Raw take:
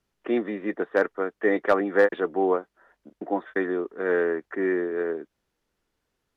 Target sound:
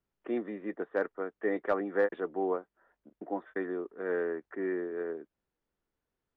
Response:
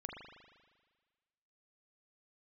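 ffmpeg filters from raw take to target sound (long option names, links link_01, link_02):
-af "highshelf=frequency=3300:gain=-11.5,volume=-8dB"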